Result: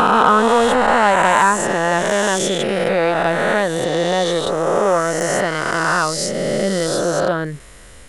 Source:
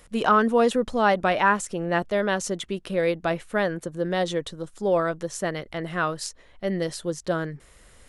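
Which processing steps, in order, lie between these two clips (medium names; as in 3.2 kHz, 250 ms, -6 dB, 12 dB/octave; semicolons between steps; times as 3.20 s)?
reverse spectral sustain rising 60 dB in 2.70 s; dynamic bell 940 Hz, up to +4 dB, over -29 dBFS, Q 2.5; in parallel at +3 dB: compression, threshold -25 dBFS, peak gain reduction 15.5 dB; on the sum: saturation -2 dBFS, distortion -23 dB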